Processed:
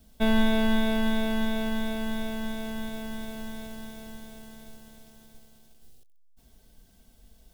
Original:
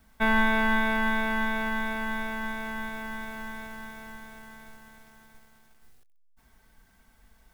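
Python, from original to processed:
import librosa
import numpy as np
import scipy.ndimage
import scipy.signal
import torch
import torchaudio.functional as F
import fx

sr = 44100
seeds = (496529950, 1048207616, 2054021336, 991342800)

y = fx.band_shelf(x, sr, hz=1400.0, db=-13.0, octaves=1.7)
y = F.gain(torch.from_numpy(y), 4.0).numpy()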